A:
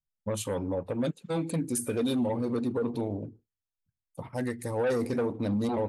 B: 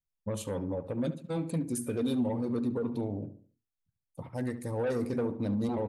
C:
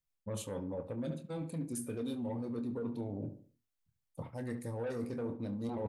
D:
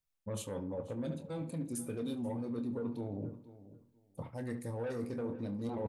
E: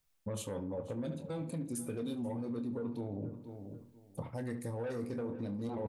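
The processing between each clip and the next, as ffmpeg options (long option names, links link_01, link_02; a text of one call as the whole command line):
ffmpeg -i in.wav -filter_complex "[0:a]lowshelf=frequency=430:gain=5.5,asplit=2[link_01][link_02];[link_02]adelay=71,lowpass=frequency=2000:poles=1,volume=-12dB,asplit=2[link_03][link_04];[link_04]adelay=71,lowpass=frequency=2000:poles=1,volume=0.39,asplit=2[link_05][link_06];[link_06]adelay=71,lowpass=frequency=2000:poles=1,volume=0.39,asplit=2[link_07][link_08];[link_08]adelay=71,lowpass=frequency=2000:poles=1,volume=0.39[link_09];[link_03][link_05][link_07][link_09]amix=inputs=4:normalize=0[link_10];[link_01][link_10]amix=inputs=2:normalize=0,volume=-6dB" out.wav
ffmpeg -i in.wav -filter_complex "[0:a]areverse,acompressor=threshold=-37dB:ratio=6,areverse,asplit=2[link_01][link_02];[link_02]adelay=26,volume=-10dB[link_03];[link_01][link_03]amix=inputs=2:normalize=0,volume=1dB" out.wav
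ffmpeg -i in.wav -filter_complex "[0:a]asplit=2[link_01][link_02];[link_02]adelay=485,lowpass=frequency=3500:poles=1,volume=-16dB,asplit=2[link_03][link_04];[link_04]adelay=485,lowpass=frequency=3500:poles=1,volume=0.19[link_05];[link_01][link_03][link_05]amix=inputs=3:normalize=0" out.wav
ffmpeg -i in.wav -af "acompressor=threshold=-49dB:ratio=2.5,volume=9dB" out.wav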